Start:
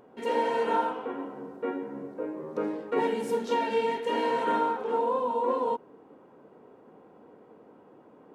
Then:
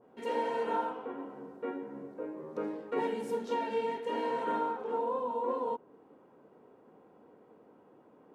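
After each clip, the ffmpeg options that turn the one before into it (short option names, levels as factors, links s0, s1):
-af "adynamicequalizer=threshold=0.00891:dfrequency=1600:dqfactor=0.7:tfrequency=1600:tqfactor=0.7:attack=5:release=100:ratio=0.375:range=2:mode=cutabove:tftype=highshelf,volume=0.531"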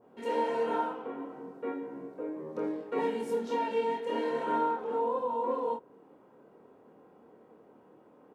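-filter_complex "[0:a]asplit=2[s0][s1];[s1]adelay=26,volume=0.631[s2];[s0][s2]amix=inputs=2:normalize=0"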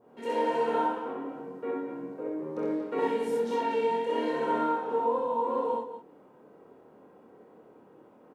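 -af "aecho=1:1:64.14|233.2:0.891|0.316"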